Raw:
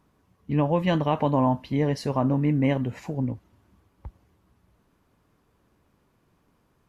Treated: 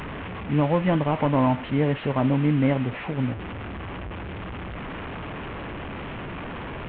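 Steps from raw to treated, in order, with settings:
linear delta modulator 16 kbit/s, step −29.5 dBFS
level +1.5 dB

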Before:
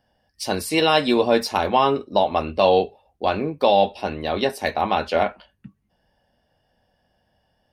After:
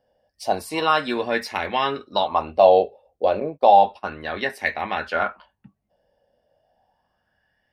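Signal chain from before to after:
0:01.69–0:02.26: parametric band 4,000 Hz +5.5 dB → +12 dB 0.96 octaves
0:03.40–0:04.20: noise gate −30 dBFS, range −21 dB
auto-filter bell 0.32 Hz 510–2,000 Hz +16 dB
level −7.5 dB

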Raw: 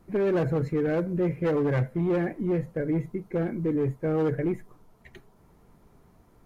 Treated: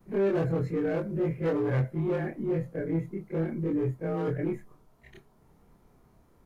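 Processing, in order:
every overlapping window played backwards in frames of 61 ms

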